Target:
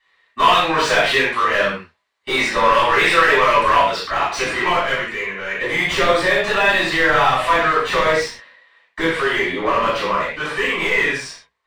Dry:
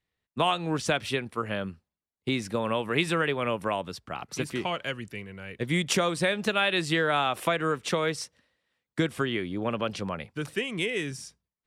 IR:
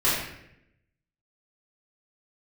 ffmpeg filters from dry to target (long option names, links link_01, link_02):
-filter_complex "[0:a]equalizer=frequency=125:width_type=o:width=1:gain=-3,equalizer=frequency=250:width_type=o:width=1:gain=-3,equalizer=frequency=500:width_type=o:width=1:gain=6,equalizer=frequency=1000:width_type=o:width=1:gain=10,equalizer=frequency=2000:width_type=o:width=1:gain=11,equalizer=frequency=4000:width_type=o:width=1:gain=11,equalizer=frequency=8000:width_type=o:width=1:gain=10,asetnsamples=nb_out_samples=441:pad=0,asendcmd='4.4 lowpass f 1100',asplit=2[link_01][link_02];[link_02]highpass=frequency=720:poles=1,volume=19dB,asoftclip=type=tanh:threshold=-8.5dB[link_03];[link_01][link_03]amix=inputs=2:normalize=0,lowpass=frequency=1900:poles=1,volume=-6dB[link_04];[1:a]atrim=start_sample=2205,afade=type=out:start_time=0.2:duration=0.01,atrim=end_sample=9261[link_05];[link_04][link_05]afir=irnorm=-1:irlink=0,volume=-12.5dB"